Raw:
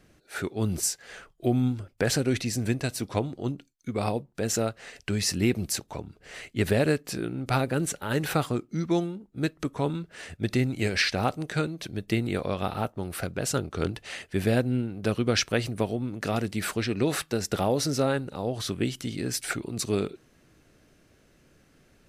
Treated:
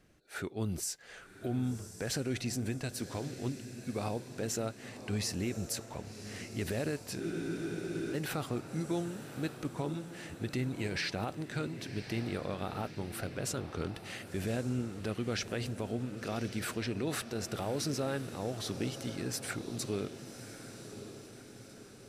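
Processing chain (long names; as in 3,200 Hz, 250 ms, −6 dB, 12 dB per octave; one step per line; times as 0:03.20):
brickwall limiter −19 dBFS, peak gain reduction 8 dB
feedback delay with all-pass diffusion 1,094 ms, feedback 55%, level −11 dB
frozen spectrum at 0:07.22, 0.93 s
level −6.5 dB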